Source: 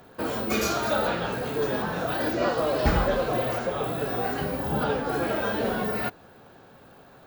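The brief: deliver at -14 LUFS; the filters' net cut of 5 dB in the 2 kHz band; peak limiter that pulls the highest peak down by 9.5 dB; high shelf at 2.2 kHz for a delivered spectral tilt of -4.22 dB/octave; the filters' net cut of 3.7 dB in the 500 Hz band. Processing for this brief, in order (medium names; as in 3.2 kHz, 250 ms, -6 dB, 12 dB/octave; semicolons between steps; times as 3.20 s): peaking EQ 500 Hz -4 dB; peaking EQ 2 kHz -5 dB; treble shelf 2.2 kHz -3.5 dB; trim +17 dB; peak limiter -4 dBFS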